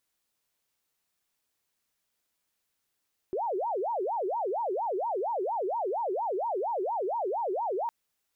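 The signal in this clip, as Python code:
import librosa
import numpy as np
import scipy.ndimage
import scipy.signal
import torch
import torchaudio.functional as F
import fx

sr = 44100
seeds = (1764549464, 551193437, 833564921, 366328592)

y = fx.siren(sr, length_s=4.56, kind='wail', low_hz=362.0, high_hz=952.0, per_s=4.3, wave='sine', level_db=-27.5)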